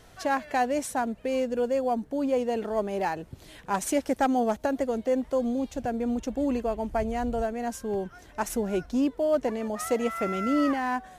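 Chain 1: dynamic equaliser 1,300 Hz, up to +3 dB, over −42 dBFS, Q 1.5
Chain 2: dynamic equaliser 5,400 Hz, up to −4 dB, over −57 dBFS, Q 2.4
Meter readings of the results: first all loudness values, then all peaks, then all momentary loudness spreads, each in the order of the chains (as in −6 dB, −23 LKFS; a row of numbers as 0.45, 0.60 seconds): −27.5, −28.0 LKFS; −13.5, −15.0 dBFS; 6, 6 LU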